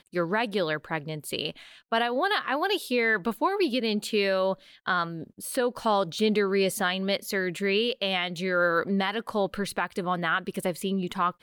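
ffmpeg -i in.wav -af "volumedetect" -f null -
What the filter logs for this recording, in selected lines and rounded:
mean_volume: -27.5 dB
max_volume: -14.1 dB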